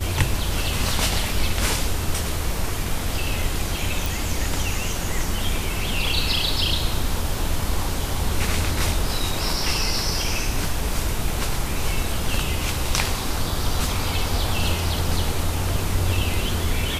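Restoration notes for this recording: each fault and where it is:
0:04.06: click

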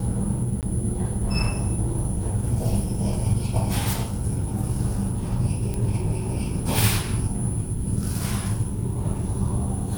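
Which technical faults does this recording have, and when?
0:00.61–0:00.63: drop-out 18 ms
0:05.74: click −16 dBFS

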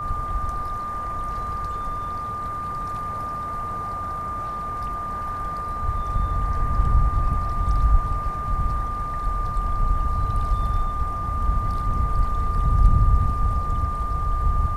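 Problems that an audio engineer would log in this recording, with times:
whistle 1,200 Hz −27 dBFS

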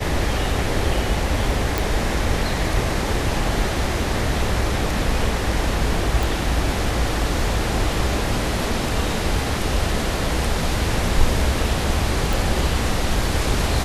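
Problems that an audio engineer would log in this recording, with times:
0:01.78: click
0:06.23: click
0:12.33: click

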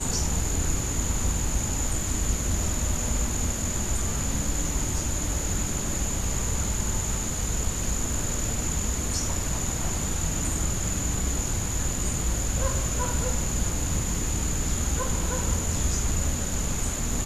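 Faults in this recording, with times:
0:08.13: drop-out 2.8 ms

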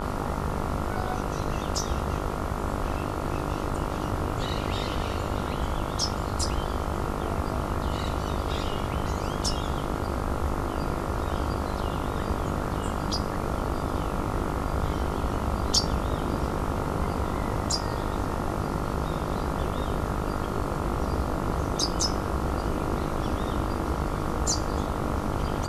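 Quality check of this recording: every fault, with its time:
mains buzz 50 Hz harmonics 28 −33 dBFS

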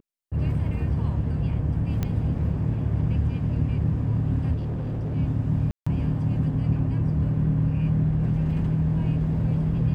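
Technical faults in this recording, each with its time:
0:02.03: click −14 dBFS
0:04.54–0:05.16: clipping −25.5 dBFS
0:05.71–0:05.87: drop-out 155 ms

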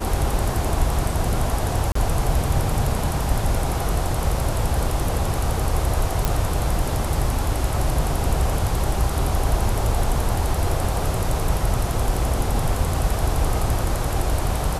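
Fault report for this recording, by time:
0:01.92–0:01.95: drop-out 34 ms
0:06.25: click

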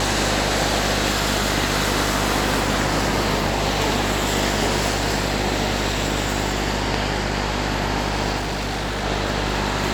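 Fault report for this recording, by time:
mains buzz 50 Hz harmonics 18 −26 dBFS
0:08.37–0:09.05: clipping −21.5 dBFS

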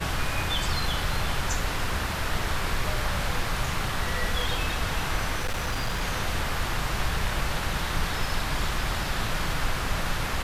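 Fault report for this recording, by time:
0:05.39–0:06.03: clipping −23.5 dBFS

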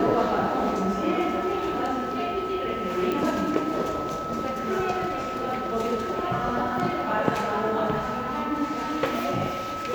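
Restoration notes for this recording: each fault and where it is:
whistle 1,300 Hz −31 dBFS
0:03.12: click

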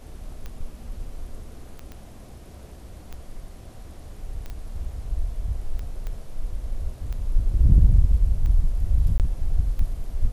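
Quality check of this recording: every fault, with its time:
scratch tick 45 rpm −22 dBFS
0:01.92: click −25 dBFS
0:04.50: click −23 dBFS
0:06.07: click −21 dBFS
0:09.18–0:09.20: drop-out 18 ms

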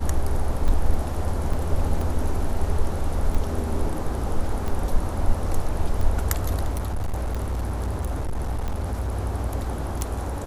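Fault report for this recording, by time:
scratch tick 45 rpm
0:01.53: drop-out 4.5 ms
0:06.71–0:09.12: clipping −22 dBFS

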